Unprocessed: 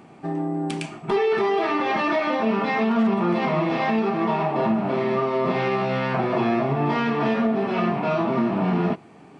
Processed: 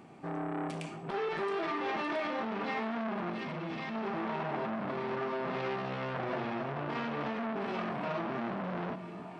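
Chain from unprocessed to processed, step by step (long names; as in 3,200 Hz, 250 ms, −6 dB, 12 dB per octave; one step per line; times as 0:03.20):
0:01.28–0:01.78: comb filter 5.8 ms
0:07.61–0:08.05: high-shelf EQ 5,900 Hz +7.5 dB
brickwall limiter −18 dBFS, peak gain reduction 7 dB
0:03.30–0:03.95: parametric band 650 Hz −12.5 dB 1.4 octaves
echo with a time of its own for lows and highs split 590 Hz, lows 292 ms, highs 672 ms, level −12.5 dB
saturating transformer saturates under 1,100 Hz
level −6 dB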